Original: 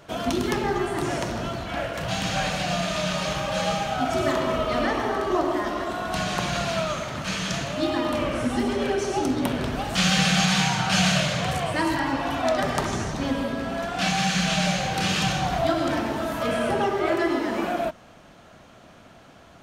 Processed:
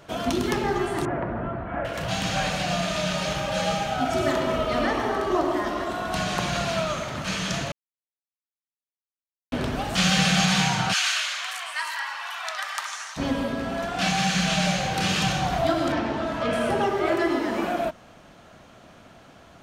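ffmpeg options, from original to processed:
ffmpeg -i in.wav -filter_complex "[0:a]asettb=1/sr,asplit=3[link_01][link_02][link_03];[link_01]atrim=end=1.054[link_04];[link_02]atrim=start=1.05:end=1.85,asetpts=PTS-STARTPTS,afade=type=in:duration=0.004:curve=qsin,afade=type=out:start_time=0.796:duration=0.004:curve=qsin,lowpass=frequency=1800:width=0.5412,lowpass=frequency=1800:width=1.3066[link_05];[link_03]atrim=start=1.846[link_06];[link_04][link_05]acrossfade=duration=0.004:curve1=hsin:curve2=qsin[link_07];[link_07][link_06]acrossfade=duration=0.004:curve1=qsin:curve2=hsin,asettb=1/sr,asplit=3[link_08][link_09][link_10];[link_08]atrim=end=2.934[link_11];[link_09]atrim=start=2.93:end=4.76,asetpts=PTS-STARTPTS,afade=type=in:duration=0.004:curve=qsin,afade=type=out:start_time=1.826:duration=0.004:curve=qsin,bandreject=frequency=1100:width=9.4[link_12];[link_10]atrim=start=4.756[link_13];[link_11][link_12]acrossfade=duration=0.004:curve1=hsin:curve2=qsin[link_14];[link_14][link_13]acrossfade=duration=0.004:curve1=qsin:curve2=hsin,asplit=3[link_15][link_16][link_17];[link_15]afade=type=out:start_time=10.92:duration=0.02[link_18];[link_16]highpass=frequency=1100:width=0.5412,highpass=frequency=1100:width=1.3066,afade=type=in:start_time=10.92:duration=0.02,afade=type=out:start_time=13.16:duration=0.02[link_19];[link_17]afade=type=in:start_time=13.16:duration=0.02[link_20];[link_18][link_19][link_20]amix=inputs=3:normalize=0,asettb=1/sr,asplit=3[link_21][link_22][link_23];[link_21]atrim=end=15.924[link_24];[link_22]atrim=start=15.92:end=16.53,asetpts=PTS-STARTPTS,afade=type=in:duration=0.004:curve=qsin,afade=type=out:start_time=0.606:duration=0.004:curve=qsin,lowpass=5000[link_25];[link_23]atrim=start=16.526[link_26];[link_24][link_25]acrossfade=duration=0.004:curve1=hsin:curve2=qsin[link_27];[link_27][link_26]acrossfade=duration=0.004:curve1=qsin:curve2=hsin,asplit=3[link_28][link_29][link_30];[link_28]atrim=end=7.72,asetpts=PTS-STARTPTS,afade=type=out:start_time=7.716:duration=0.004:curve=hsin[link_31];[link_29]atrim=start=7.72:end=9.52,asetpts=PTS-STARTPTS,volume=0[link_32];[link_30]atrim=start=9.52,asetpts=PTS-STARTPTS,afade=type=in:duration=0.004:curve=hsin[link_33];[link_31][link_32][link_33]concat=n=3:v=0:a=1" out.wav

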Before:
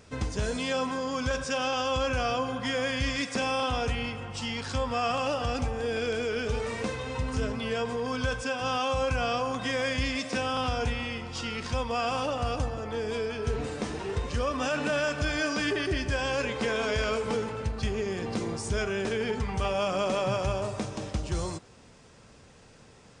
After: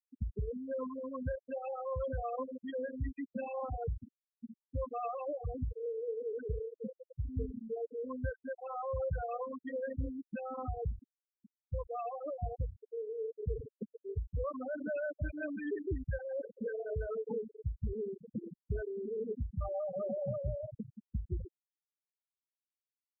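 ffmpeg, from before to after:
ffmpeg -i in.wav -filter_complex "[0:a]asplit=2[link_01][link_02];[link_02]afade=type=in:start_time=9.35:duration=0.01,afade=type=out:start_time=9.81:duration=0.01,aecho=0:1:310|620|930|1240:0.211349|0.095107|0.0427982|0.0192592[link_03];[link_01][link_03]amix=inputs=2:normalize=0,afftfilt=real='re*gte(hypot(re,im),0.178)':imag='im*gte(hypot(re,im),0.178)':win_size=1024:overlap=0.75,lowpass=frequency=1000:poles=1,afftfilt=real='re*gte(hypot(re,im),0.00282)':imag='im*gte(hypot(re,im),0.00282)':win_size=1024:overlap=0.75,volume=-5dB" out.wav

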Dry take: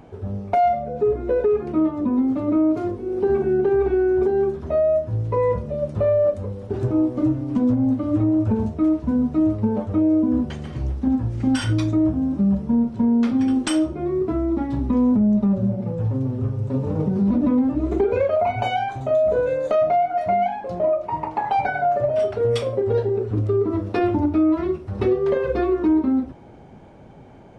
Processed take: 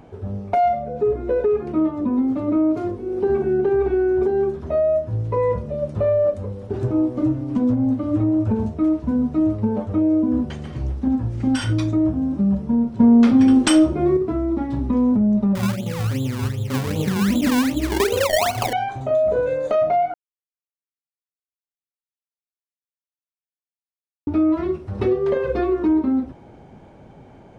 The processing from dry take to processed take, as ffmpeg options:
ffmpeg -i in.wav -filter_complex "[0:a]asettb=1/sr,asplit=3[link_01][link_02][link_03];[link_01]atrim=end=13.004[link_04];[link_02]atrim=start=13:end=14.17,asetpts=PTS-STARTPTS,afade=type=in:duration=0.004:curve=qsin,afade=type=out:start_time=1.166:duration=0.004:curve=qsin,acontrast=70[link_05];[link_03]atrim=start=14.166[link_06];[link_04][link_05]acrossfade=duration=0.004:curve1=hsin:curve2=qsin[link_07];[link_07][link_06]acrossfade=duration=0.004:curve1=qsin:curve2=hsin,asettb=1/sr,asplit=3[link_08][link_09][link_10];[link_08]atrim=end=15.554[link_11];[link_09]atrim=start=15.55:end=18.73,asetpts=PTS-STARTPTS,afade=type=in:duration=0.004:curve=qsin,afade=type=out:start_time=3.176:duration=0.004:curve=qsin,acrusher=samples=24:mix=1:aa=0.000001:lfo=1:lforange=24:lforate=2.6[link_12];[link_10]atrim=start=18.726[link_13];[link_11][link_12]acrossfade=duration=0.004:curve1=hsin:curve2=qsin[link_14];[link_14][link_13]acrossfade=duration=0.004:curve1=qsin:curve2=hsin,asplit=3[link_15][link_16][link_17];[link_15]atrim=end=20.14,asetpts=PTS-STARTPTS,afade=type=out:start_time=20.136:duration=0.004:curve=hsin[link_18];[link_16]atrim=start=20.14:end=24.27,asetpts=PTS-STARTPTS,volume=0[link_19];[link_17]atrim=start=24.27,asetpts=PTS-STARTPTS,afade=type=in:duration=0.004:curve=hsin[link_20];[link_18][link_19][link_20]concat=n=3:v=0:a=1" out.wav

